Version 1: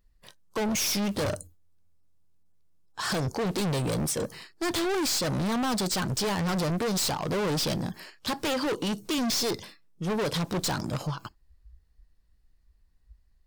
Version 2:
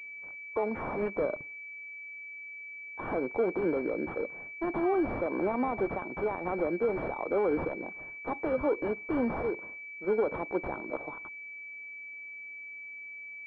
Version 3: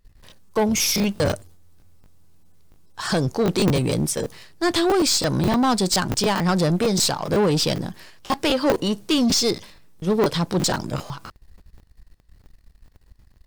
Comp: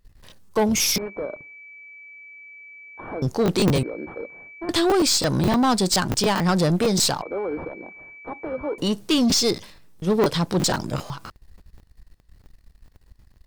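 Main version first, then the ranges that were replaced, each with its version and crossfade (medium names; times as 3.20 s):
3
0.98–3.22 s: from 2
3.83–4.69 s: from 2
7.22–8.78 s: from 2
not used: 1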